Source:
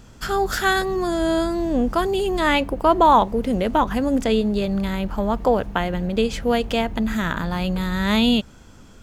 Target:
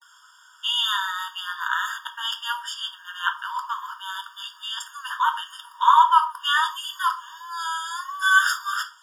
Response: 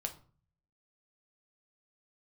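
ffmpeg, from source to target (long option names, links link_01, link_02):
-filter_complex "[0:a]areverse[link_01];[1:a]atrim=start_sample=2205,atrim=end_sample=6174[link_02];[link_01][link_02]afir=irnorm=-1:irlink=0,afftfilt=real='re*eq(mod(floor(b*sr/1024/930),2),1)':imag='im*eq(mod(floor(b*sr/1024/930),2),1)':win_size=1024:overlap=0.75,volume=4.5dB"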